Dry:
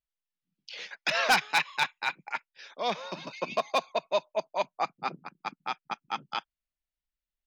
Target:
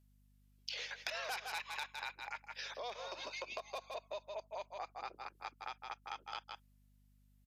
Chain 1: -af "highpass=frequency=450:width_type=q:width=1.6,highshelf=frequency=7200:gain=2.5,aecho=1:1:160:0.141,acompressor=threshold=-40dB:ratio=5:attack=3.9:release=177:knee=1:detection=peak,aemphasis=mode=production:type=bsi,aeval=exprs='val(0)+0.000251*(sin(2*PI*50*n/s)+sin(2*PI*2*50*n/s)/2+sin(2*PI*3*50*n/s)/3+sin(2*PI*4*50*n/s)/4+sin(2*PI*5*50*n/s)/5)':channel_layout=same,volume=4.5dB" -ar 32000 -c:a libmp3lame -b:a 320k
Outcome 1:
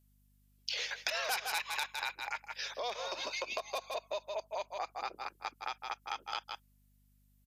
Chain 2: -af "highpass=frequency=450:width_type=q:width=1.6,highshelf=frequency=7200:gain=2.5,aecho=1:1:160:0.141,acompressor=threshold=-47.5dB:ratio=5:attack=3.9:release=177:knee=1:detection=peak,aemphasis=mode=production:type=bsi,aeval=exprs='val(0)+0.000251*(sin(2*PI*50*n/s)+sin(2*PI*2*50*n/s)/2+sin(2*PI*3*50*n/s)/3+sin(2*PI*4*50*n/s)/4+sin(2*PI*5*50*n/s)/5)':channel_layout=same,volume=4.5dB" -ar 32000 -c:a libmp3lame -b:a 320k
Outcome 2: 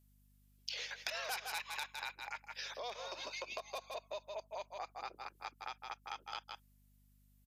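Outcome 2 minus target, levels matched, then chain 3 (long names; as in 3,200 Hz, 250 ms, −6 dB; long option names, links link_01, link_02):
8,000 Hz band +3.0 dB
-af "highpass=frequency=450:width_type=q:width=1.6,highshelf=frequency=7200:gain=-6.5,aecho=1:1:160:0.141,acompressor=threshold=-47.5dB:ratio=5:attack=3.9:release=177:knee=1:detection=peak,aemphasis=mode=production:type=bsi,aeval=exprs='val(0)+0.000251*(sin(2*PI*50*n/s)+sin(2*PI*2*50*n/s)/2+sin(2*PI*3*50*n/s)/3+sin(2*PI*4*50*n/s)/4+sin(2*PI*5*50*n/s)/5)':channel_layout=same,volume=4.5dB" -ar 32000 -c:a libmp3lame -b:a 320k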